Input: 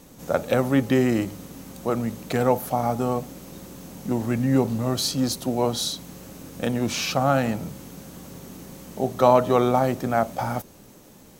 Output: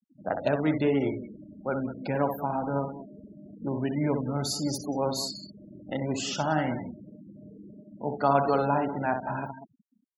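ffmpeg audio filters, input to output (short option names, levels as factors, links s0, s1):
-filter_complex "[0:a]afftfilt=real='re*pow(10,6/40*sin(2*PI*(1.5*log(max(b,1)*sr/1024/100)/log(2)-(2.7)*(pts-256)/sr)))':imag='im*pow(10,6/40*sin(2*PI*(1.5*log(max(b,1)*sr/1024/100)/log(2)-(2.7)*(pts-256)/sr)))':win_size=1024:overlap=0.75,asplit=2[s0][s1];[s1]aecho=0:1:72|210|215:0.447|0.141|0.224[s2];[s0][s2]amix=inputs=2:normalize=0,asetrate=49392,aresample=44100,afftfilt=real='re*gte(hypot(re,im),0.0355)':imag='im*gte(hypot(re,im),0.0355)':win_size=1024:overlap=0.75,volume=0.473"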